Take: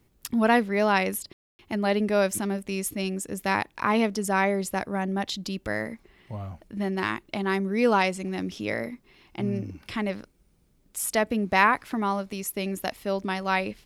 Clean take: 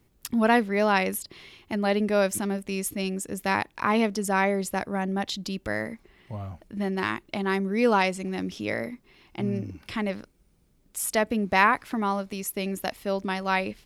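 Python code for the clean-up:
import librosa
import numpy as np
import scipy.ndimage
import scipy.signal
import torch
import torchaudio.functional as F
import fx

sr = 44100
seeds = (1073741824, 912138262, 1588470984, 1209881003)

y = fx.fix_ambience(x, sr, seeds[0], print_start_s=10.31, print_end_s=10.81, start_s=1.33, end_s=1.59)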